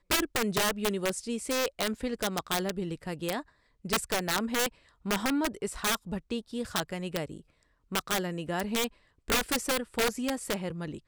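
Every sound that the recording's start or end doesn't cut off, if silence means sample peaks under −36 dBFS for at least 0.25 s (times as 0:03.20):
0:03.85–0:04.68
0:05.06–0:07.37
0:07.92–0:08.88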